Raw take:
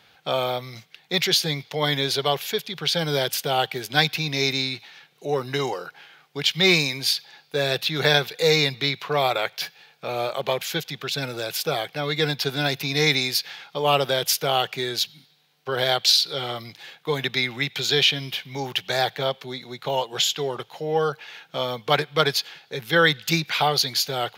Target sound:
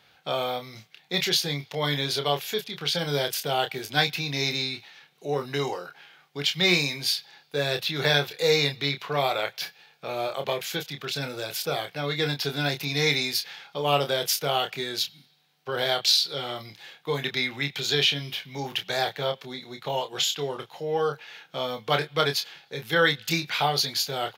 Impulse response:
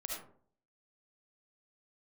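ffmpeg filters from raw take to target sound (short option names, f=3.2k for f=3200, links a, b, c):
-filter_complex "[0:a]asplit=2[a][b];[b]adelay=28,volume=-7dB[c];[a][c]amix=inputs=2:normalize=0,volume=-4dB"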